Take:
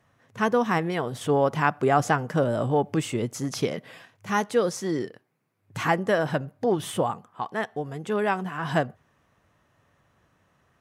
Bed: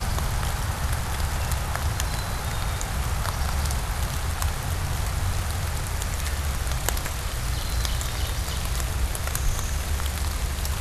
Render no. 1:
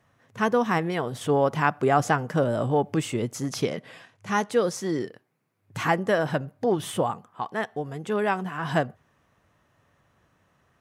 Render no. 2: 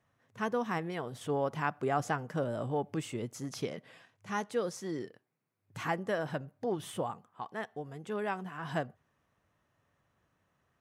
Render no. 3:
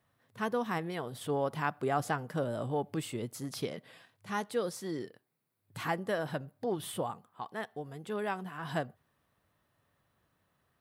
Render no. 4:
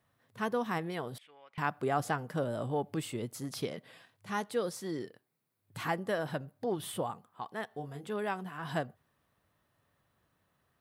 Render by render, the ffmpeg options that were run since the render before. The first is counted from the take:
ffmpeg -i in.wav -filter_complex "[0:a]asettb=1/sr,asplit=3[link_01][link_02][link_03];[link_01]atrim=end=3.634[link_04];[link_02]atrim=start=3.63:end=4.51,asetpts=PTS-STARTPTS,afade=type=in:duration=0.004:curve=qsin,afade=type=out:start_time=0.876:duration=0.004:curve=qsin,lowpass=frequency=11000:width=0.5412,lowpass=frequency=11000:width=1.3066[link_05];[link_03]atrim=start=4.506[link_06];[link_04][link_05]acrossfade=duration=0.004:curve1=hsin:curve2=qsin[link_07];[link_07][link_06]acrossfade=duration=0.004:curve1=qsin:curve2=hsin" out.wav
ffmpeg -i in.wav -af "volume=-10dB" out.wav
ffmpeg -i in.wav -af "aexciter=amount=1.5:drive=3.8:freq=3500" out.wav
ffmpeg -i in.wav -filter_complex "[0:a]asettb=1/sr,asplit=3[link_01][link_02][link_03];[link_01]atrim=end=1.184[link_04];[link_02]atrim=start=1.18:end=1.58,asetpts=PTS-STARTPTS,afade=type=in:duration=0.004:curve=qsin,afade=type=out:start_time=0.396:duration=0.004:curve=qsin,bandpass=frequency=2300:width_type=q:width=5.7[link_05];[link_03]atrim=start=1.576[link_06];[link_04][link_05]acrossfade=duration=0.004:curve1=hsin:curve2=qsin[link_07];[link_07][link_06]acrossfade=duration=0.004:curve1=qsin:curve2=hsin,asettb=1/sr,asplit=3[link_08][link_09][link_10];[link_08]atrim=end=7.684[link_11];[link_09]atrim=start=7.68:end=8.09,asetpts=PTS-STARTPTS,afade=type=in:duration=0.004:curve=qsin,afade=type=out:start_time=0.406:duration=0.004:curve=qsin,asplit=2[link_12][link_13];[link_13]adelay=28,volume=-6dB[link_14];[link_12][link_14]amix=inputs=2:normalize=0,atrim=end_sample=18081[link_15];[link_10]atrim=start=8.086[link_16];[link_11][link_15]acrossfade=duration=0.004:curve1=hsin:curve2=qsin[link_17];[link_17][link_16]acrossfade=duration=0.004:curve1=qsin:curve2=hsin" out.wav

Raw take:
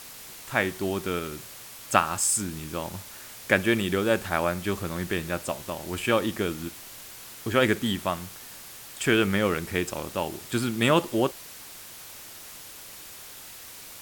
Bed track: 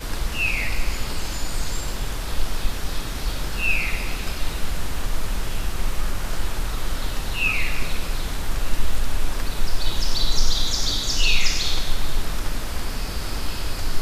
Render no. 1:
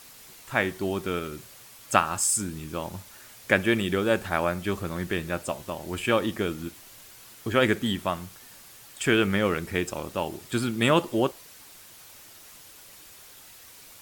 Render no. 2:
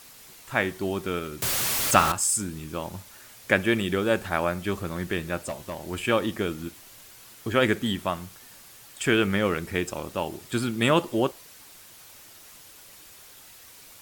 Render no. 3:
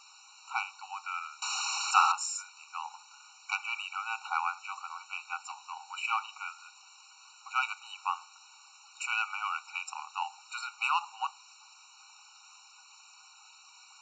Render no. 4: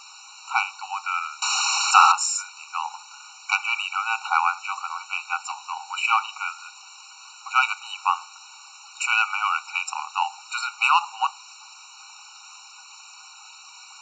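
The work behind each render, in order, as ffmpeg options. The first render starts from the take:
ffmpeg -i in.wav -af "afftdn=noise_reduction=6:noise_floor=-44" out.wav
ffmpeg -i in.wav -filter_complex "[0:a]asettb=1/sr,asplit=3[link_01][link_02][link_03];[link_01]atrim=end=1.424[link_04];[link_02]atrim=start=1.42:end=2.12,asetpts=PTS-STARTPTS,afade=type=in:duration=0.004:curve=qsin,afade=type=out:start_time=0.696:duration=0.004:curve=qsin,aeval=exprs='val(0)+0.5*0.0944*sgn(val(0))':channel_layout=same[link_05];[link_03]atrim=start=2.116[link_06];[link_04][link_05]acrossfade=duration=0.004:curve1=hsin:curve2=qsin[link_07];[link_07][link_06]acrossfade=duration=0.004:curve1=qsin:curve2=hsin,asplit=3[link_08][link_09][link_10];[link_08]afade=type=out:start_time=5.42:duration=0.02[link_11];[link_09]asoftclip=type=hard:threshold=-26.5dB,afade=type=in:start_time=5.42:duration=0.02,afade=type=out:start_time=5.9:duration=0.02[link_12];[link_10]afade=type=in:start_time=5.9:duration=0.02[link_13];[link_11][link_12][link_13]amix=inputs=3:normalize=0" out.wav
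ffmpeg -i in.wav -af "aresample=16000,asoftclip=type=tanh:threshold=-11dB,aresample=44100,afftfilt=real='re*eq(mod(floor(b*sr/1024/750),2),1)':imag='im*eq(mod(floor(b*sr/1024/750),2),1)':win_size=1024:overlap=0.75" out.wav
ffmpeg -i in.wav -af "volume=10.5dB,alimiter=limit=-1dB:level=0:latency=1" out.wav

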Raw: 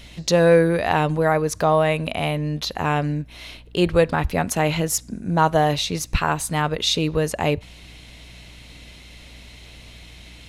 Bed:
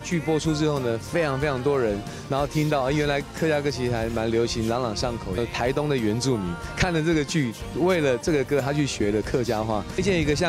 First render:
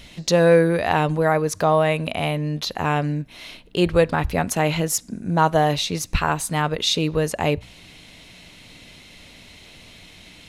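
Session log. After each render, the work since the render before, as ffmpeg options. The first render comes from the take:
ffmpeg -i in.wav -af "bandreject=frequency=60:width_type=h:width=4,bandreject=frequency=120:width_type=h:width=4" out.wav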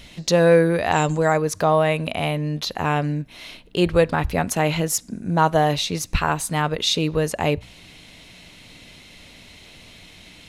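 ffmpeg -i in.wav -filter_complex "[0:a]asettb=1/sr,asplit=3[link_01][link_02][link_03];[link_01]atrim=end=0.924[link_04];[link_02]atrim=start=0.92:end=1.38,asetpts=PTS-STARTPTS,afade=type=in:duration=0.004:curve=qsin,afade=type=out:start_time=0.456:duration=0.004:curve=qsin,lowpass=frequency=7300:width_type=q:width=13[link_05];[link_03]atrim=start=1.376[link_06];[link_04][link_05]acrossfade=duration=0.004:curve1=hsin:curve2=qsin[link_07];[link_07][link_06]acrossfade=duration=0.004:curve1=qsin:curve2=hsin" out.wav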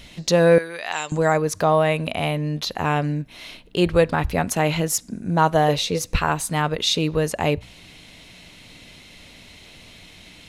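ffmpeg -i in.wav -filter_complex "[0:a]asettb=1/sr,asplit=3[link_01][link_02][link_03];[link_01]atrim=end=0.584[link_04];[link_02]atrim=start=0.58:end=1.12,asetpts=PTS-STARTPTS,afade=type=in:duration=0.004:curve=qsin,afade=type=out:start_time=0.536:duration=0.004:curve=qsin,bandpass=frequency=4200:width_type=q:width=0.53[link_05];[link_03]atrim=start=1.116[link_06];[link_04][link_05]acrossfade=duration=0.004:curve1=hsin:curve2=qsin[link_07];[link_07][link_06]acrossfade=duration=0.004:curve1=qsin:curve2=hsin,asettb=1/sr,asplit=3[link_08][link_09][link_10];[link_08]atrim=end=5.684[link_11];[link_09]atrim=start=5.68:end=6.19,asetpts=PTS-STARTPTS,afade=type=in:duration=0.004:curve=qsin,afade=type=out:start_time=0.506:duration=0.004:curve=qsin,equalizer=frequency=490:width=5.4:gain=13.5[link_12];[link_10]atrim=start=6.186[link_13];[link_11][link_12]acrossfade=duration=0.004:curve1=hsin:curve2=qsin[link_14];[link_14][link_13]acrossfade=duration=0.004:curve1=qsin:curve2=hsin" out.wav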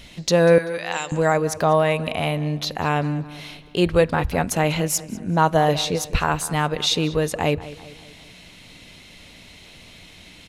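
ffmpeg -i in.wav -filter_complex "[0:a]asplit=2[link_01][link_02];[link_02]adelay=194,lowpass=frequency=3800:poles=1,volume=-16dB,asplit=2[link_03][link_04];[link_04]adelay=194,lowpass=frequency=3800:poles=1,volume=0.49,asplit=2[link_05][link_06];[link_06]adelay=194,lowpass=frequency=3800:poles=1,volume=0.49,asplit=2[link_07][link_08];[link_08]adelay=194,lowpass=frequency=3800:poles=1,volume=0.49[link_09];[link_01][link_03][link_05][link_07][link_09]amix=inputs=5:normalize=0" out.wav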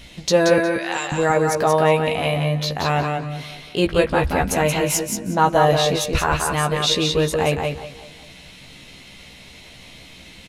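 ffmpeg -i in.wav -filter_complex "[0:a]asplit=2[link_01][link_02];[link_02]adelay=15,volume=-5dB[link_03];[link_01][link_03]amix=inputs=2:normalize=0,aecho=1:1:179|358|537:0.562|0.09|0.0144" out.wav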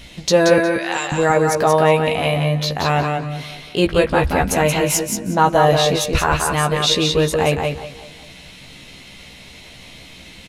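ffmpeg -i in.wav -af "volume=2.5dB,alimiter=limit=-3dB:level=0:latency=1" out.wav

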